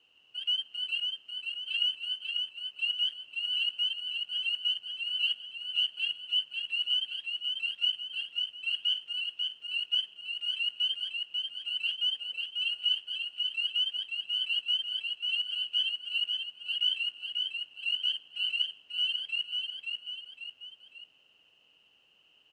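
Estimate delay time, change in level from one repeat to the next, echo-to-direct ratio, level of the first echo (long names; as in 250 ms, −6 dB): 542 ms, −6.5 dB, −3.0 dB, −4.0 dB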